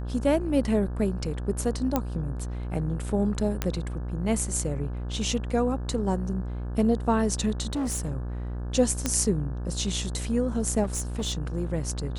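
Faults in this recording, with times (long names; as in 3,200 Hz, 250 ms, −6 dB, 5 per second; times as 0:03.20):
mains buzz 60 Hz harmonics 29 −32 dBFS
0:01.96: click −10 dBFS
0:03.62: click −10 dBFS
0:07.73–0:08.14: clipping −25 dBFS
0:09.06: click −10 dBFS
0:10.83–0:11.34: clipping −24 dBFS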